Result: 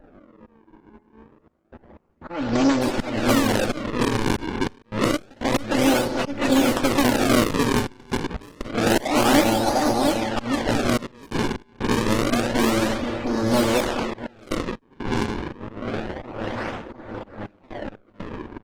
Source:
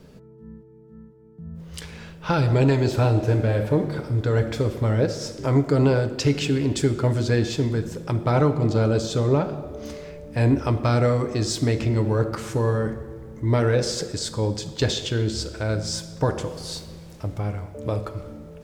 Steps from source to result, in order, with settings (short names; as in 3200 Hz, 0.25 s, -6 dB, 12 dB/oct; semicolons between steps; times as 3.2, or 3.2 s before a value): minimum comb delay 3.5 ms; 8.19–9.32 bell 770 Hz +15 dB 0.4 oct; feedback echo 0.702 s, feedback 55%, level -3.5 dB; on a send at -17.5 dB: reverb RT60 2.9 s, pre-delay 6 ms; on the sum: decimation with a swept rate 39×, swing 160% 0.28 Hz; auto swell 0.277 s; bell 83 Hz -7.5 dB 2.3 oct; 0.51–1.71 de-hum 84.26 Hz, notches 26; low-pass opened by the level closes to 1200 Hz, open at -19.5 dBFS; step gate "xxxxxx.x.xxxx" 61 bpm -24 dB; gain +4.5 dB; Opus 16 kbps 48000 Hz